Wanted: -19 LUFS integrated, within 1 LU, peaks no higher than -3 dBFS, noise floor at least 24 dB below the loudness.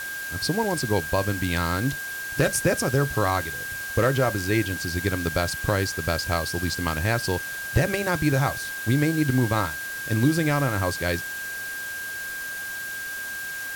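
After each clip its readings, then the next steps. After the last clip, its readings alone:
steady tone 1.6 kHz; tone level -31 dBFS; noise floor -33 dBFS; noise floor target -49 dBFS; loudness -25.0 LUFS; peak level -9.5 dBFS; loudness target -19.0 LUFS
-> band-stop 1.6 kHz, Q 30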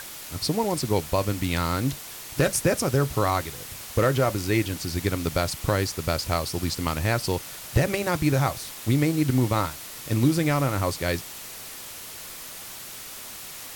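steady tone not found; noise floor -40 dBFS; noise floor target -50 dBFS
-> noise reduction 10 dB, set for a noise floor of -40 dBFS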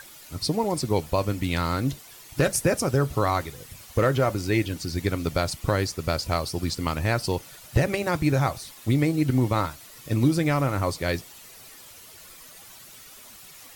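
noise floor -47 dBFS; noise floor target -50 dBFS
-> noise reduction 6 dB, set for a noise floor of -47 dBFS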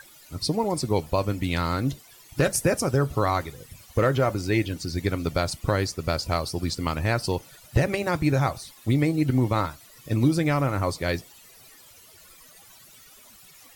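noise floor -51 dBFS; loudness -25.5 LUFS; peak level -10.5 dBFS; loudness target -19.0 LUFS
-> trim +6.5 dB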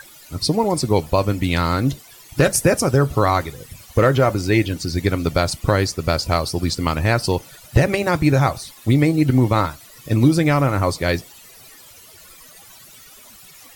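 loudness -19.0 LUFS; peak level -4.0 dBFS; noise floor -45 dBFS

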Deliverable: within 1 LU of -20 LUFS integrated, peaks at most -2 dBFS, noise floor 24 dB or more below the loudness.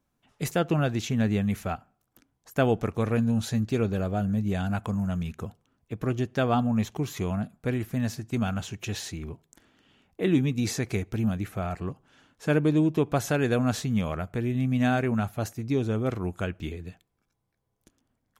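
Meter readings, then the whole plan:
loudness -28.0 LUFS; peak level -12.0 dBFS; loudness target -20.0 LUFS
-> trim +8 dB

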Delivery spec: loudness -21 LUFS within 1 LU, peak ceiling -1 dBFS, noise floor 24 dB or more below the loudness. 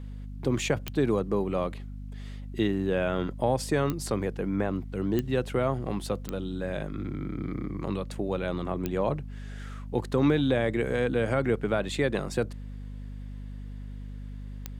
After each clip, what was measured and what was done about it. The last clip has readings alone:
clicks found 6; hum 50 Hz; highest harmonic 250 Hz; hum level -36 dBFS; loudness -29.0 LUFS; peak level -11.5 dBFS; loudness target -21.0 LUFS
-> de-click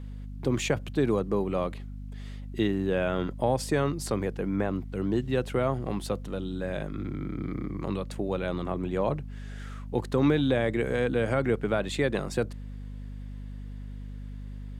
clicks found 0; hum 50 Hz; highest harmonic 250 Hz; hum level -36 dBFS
-> de-hum 50 Hz, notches 5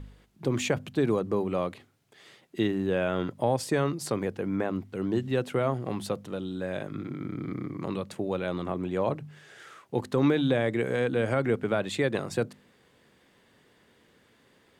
hum not found; loudness -29.5 LUFS; peak level -12.0 dBFS; loudness target -21.0 LUFS
-> trim +8.5 dB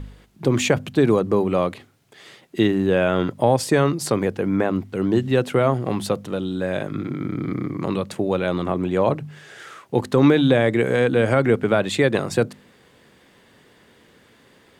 loudness -21.0 LUFS; peak level -3.5 dBFS; noise floor -55 dBFS

